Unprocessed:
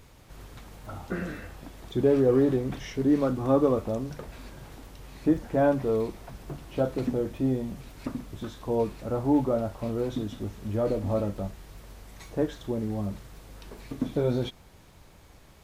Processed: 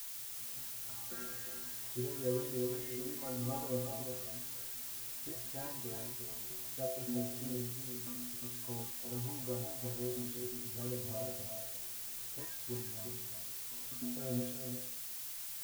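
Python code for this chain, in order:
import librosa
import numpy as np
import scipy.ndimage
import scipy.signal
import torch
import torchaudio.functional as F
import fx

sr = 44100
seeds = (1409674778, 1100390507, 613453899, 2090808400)

p1 = fx.stiff_resonator(x, sr, f0_hz=120.0, decay_s=0.7, stiffness=0.008)
p2 = fx.dmg_noise_colour(p1, sr, seeds[0], colour='blue', level_db=-44.0)
p3 = p2 + fx.echo_single(p2, sr, ms=354, db=-7.5, dry=0)
y = F.gain(torch.from_numpy(p3), -1.0).numpy()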